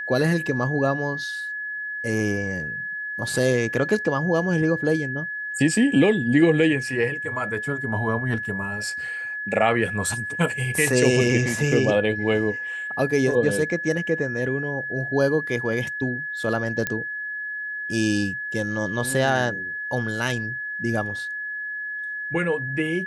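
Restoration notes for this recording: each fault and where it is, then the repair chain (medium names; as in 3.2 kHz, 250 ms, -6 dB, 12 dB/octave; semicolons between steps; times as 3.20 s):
whine 1.7 kHz -28 dBFS
16.87 s: pop -9 dBFS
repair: de-click; band-stop 1.7 kHz, Q 30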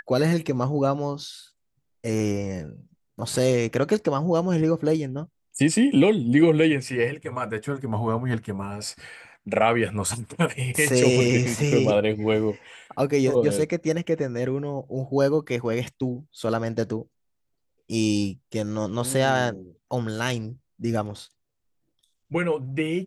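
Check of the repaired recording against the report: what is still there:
nothing left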